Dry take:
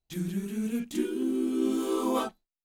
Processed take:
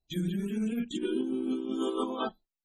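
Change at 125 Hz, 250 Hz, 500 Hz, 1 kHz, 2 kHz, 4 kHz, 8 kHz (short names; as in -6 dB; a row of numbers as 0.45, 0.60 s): n/a, -2.5 dB, -2.5 dB, -3.0 dB, -1.0 dB, +1.5 dB, -8.0 dB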